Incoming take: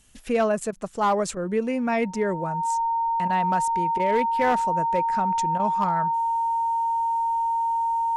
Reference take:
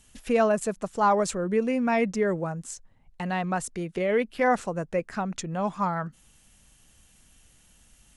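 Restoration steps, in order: clip repair -15 dBFS; notch 920 Hz, Q 30; interpolate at 0.71/1.35/3.28/3.98/5.58, 14 ms

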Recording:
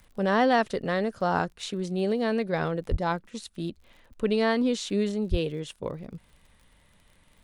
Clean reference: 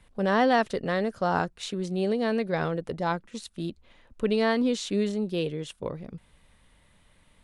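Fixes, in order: de-click; 2.9–3.02 HPF 140 Hz 24 dB/oct; 5.3–5.42 HPF 140 Hz 24 dB/oct

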